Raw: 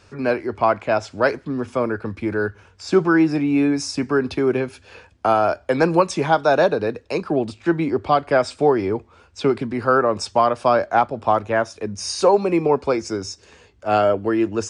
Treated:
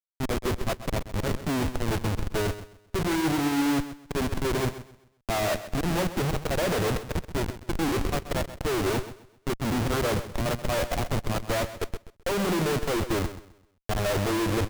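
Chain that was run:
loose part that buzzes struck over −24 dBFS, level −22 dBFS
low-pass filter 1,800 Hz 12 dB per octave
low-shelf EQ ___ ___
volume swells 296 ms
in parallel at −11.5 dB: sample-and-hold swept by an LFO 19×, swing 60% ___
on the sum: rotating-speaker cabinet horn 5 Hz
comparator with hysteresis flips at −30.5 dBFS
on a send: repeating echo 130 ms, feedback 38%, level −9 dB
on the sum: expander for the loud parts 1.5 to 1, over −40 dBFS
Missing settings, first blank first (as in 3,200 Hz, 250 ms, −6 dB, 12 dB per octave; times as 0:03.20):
170 Hz, +4.5 dB, 0.35 Hz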